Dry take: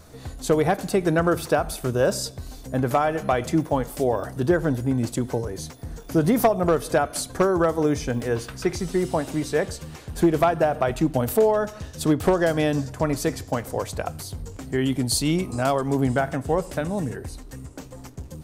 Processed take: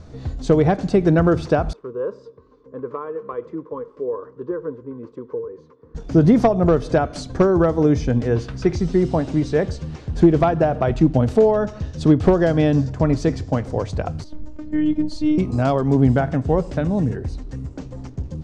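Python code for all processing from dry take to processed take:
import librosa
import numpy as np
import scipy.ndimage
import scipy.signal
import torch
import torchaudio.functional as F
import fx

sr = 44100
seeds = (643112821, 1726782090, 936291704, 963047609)

y = fx.chain(x, sr, fx.double_bandpass(hz=700.0, octaves=1.2),
    fx.notch(hz=820.0, q=13.0), at=(1.73, 5.95))
y = fx.chain(y, sr, fx.high_shelf(hz=2800.0, db=-11.5),
    fx.robotise(hz=304.0), at=(14.24, 15.38))
y = scipy.signal.sosfilt(scipy.signal.butter(4, 6200.0, 'lowpass', fs=sr, output='sos'), y)
y = fx.low_shelf(y, sr, hz=460.0, db=11.5)
y = y * librosa.db_to_amplitude(-2.0)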